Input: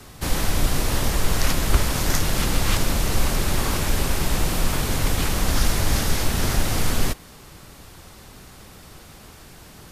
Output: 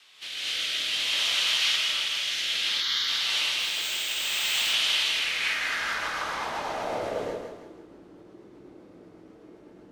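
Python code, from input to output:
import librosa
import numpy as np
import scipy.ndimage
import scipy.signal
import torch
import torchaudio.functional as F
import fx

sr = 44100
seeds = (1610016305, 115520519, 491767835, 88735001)

p1 = fx.rider(x, sr, range_db=10, speed_s=0.5)
p2 = fx.rotary_switch(p1, sr, hz=0.6, then_hz=8.0, switch_at_s=4.88)
p3 = p2 + fx.echo_split(p2, sr, split_hz=520.0, low_ms=109, high_ms=162, feedback_pct=52, wet_db=-4.5, dry=0)
p4 = fx.filter_sweep_bandpass(p3, sr, from_hz=3100.0, to_hz=330.0, start_s=4.87, end_s=7.63, q=2.6)
p5 = fx.resample_bad(p4, sr, factor=4, down='none', up='hold', at=(3.59, 4.49))
p6 = fx.low_shelf(p5, sr, hz=340.0, db=-8.0)
p7 = fx.fixed_phaser(p6, sr, hz=2600.0, stages=6, at=(2.56, 3.08))
p8 = fx.dynamic_eq(p7, sr, hz=3400.0, q=1.0, threshold_db=-51.0, ratio=4.0, max_db=4)
y = fx.rev_gated(p8, sr, seeds[0], gate_ms=270, shape='rising', drr_db=-7.5)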